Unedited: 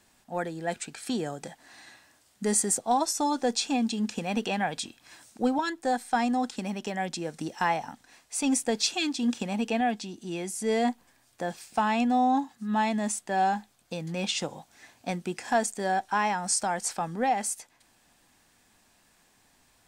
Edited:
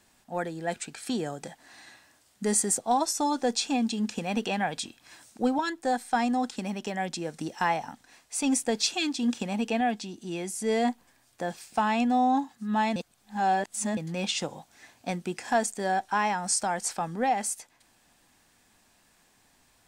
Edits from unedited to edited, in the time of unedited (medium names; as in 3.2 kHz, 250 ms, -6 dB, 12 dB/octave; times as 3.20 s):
12.96–13.97 s: reverse